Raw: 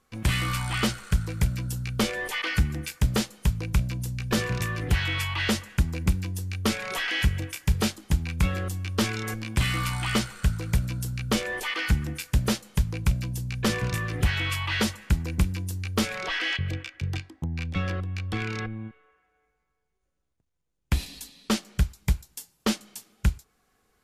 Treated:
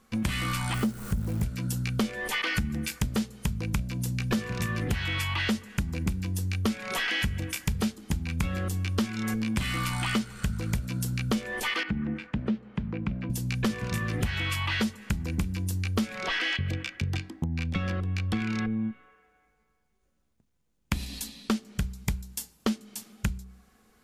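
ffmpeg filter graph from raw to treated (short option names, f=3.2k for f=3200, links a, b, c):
-filter_complex "[0:a]asettb=1/sr,asplit=3[a][b][c];[a]atrim=end=0.744[d];[b]atrim=start=0.74:end=1.43,asetpts=PTS-STARTPTS,afade=t=in:d=0.004:c=qsin,afade=t=out:st=0.686:d=0.004:c=qsin,aeval=exprs='val(0)+0.5*0.0316*sgn(val(0))':c=same,equalizer=f=3.1k:t=o:w=2.9:g=-14.5,acrusher=bits=9:dc=4:mix=0:aa=0.000001[e];[c]atrim=start=1.426[f];[d][e]acrossfade=d=0.004:c1=hsin:c2=qsin[g];[g][f]acrossfade=d=0.004:c1=qsin:c2=hsin,asettb=1/sr,asplit=3[h][i][j];[h]atrim=end=11.834[k];[i]atrim=start=11.83:end=13.3,asetpts=PTS-STARTPTS,afade=t=in:d=0.004:c=qsin,afade=t=out:st=1.466:d=0.004:c=qsin,lowpass=4k,acrossover=split=170 2500:gain=0.224 1 0.0708[l][m][n];[l][m][n]amix=inputs=3:normalize=0,acrossover=split=410|3000[o][p][q];[p]acompressor=threshold=-45dB:ratio=3:attack=3.2:release=140:knee=2.83:detection=peak[r];[o][r][q]amix=inputs=3:normalize=0[s];[j]atrim=start=13.296[t];[k][s]acrossfade=d=0.004:c1=hsin:c2=qsin[u];[u][t]acrossfade=d=0.004:c1=qsin:c2=hsin,equalizer=f=220:t=o:w=0.35:g=10.5,bandreject=f=62.96:t=h:w=4,bandreject=f=125.92:t=h:w=4,bandreject=f=188.88:t=h:w=4,bandreject=f=251.84:t=h:w=4,bandreject=f=314.8:t=h:w=4,bandreject=f=377.76:t=h:w=4,bandreject=f=440.72:t=h:w=4,acompressor=threshold=-31dB:ratio=6,volume=5dB"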